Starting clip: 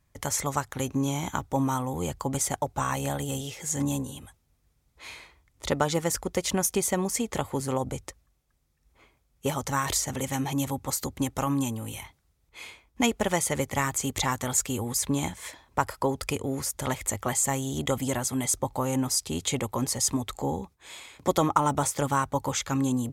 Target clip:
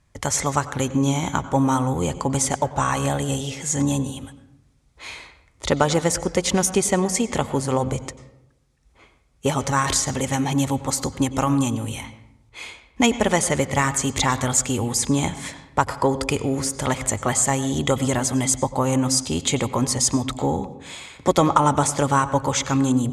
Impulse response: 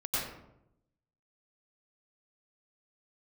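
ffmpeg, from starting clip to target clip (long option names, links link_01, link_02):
-filter_complex "[0:a]lowpass=frequency=10000:width=0.5412,lowpass=frequency=10000:width=1.3066,acontrast=57,asplit=2[link_01][link_02];[1:a]atrim=start_sample=2205,lowpass=6500[link_03];[link_02][link_03]afir=irnorm=-1:irlink=0,volume=-19dB[link_04];[link_01][link_04]amix=inputs=2:normalize=0"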